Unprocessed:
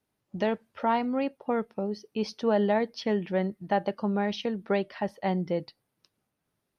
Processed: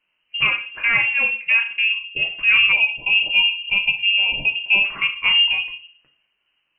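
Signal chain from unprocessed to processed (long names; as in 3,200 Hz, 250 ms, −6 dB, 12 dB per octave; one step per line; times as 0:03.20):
rectangular room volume 40 cubic metres, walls mixed, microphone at 0.42 metres
in parallel at −8 dB: hard clipping −21 dBFS, distortion −12 dB
on the sum: gain on a spectral selection 0:02.72–0:04.85, 680–2,000 Hz −26 dB
voice inversion scrambler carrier 3,000 Hz
level +4.5 dB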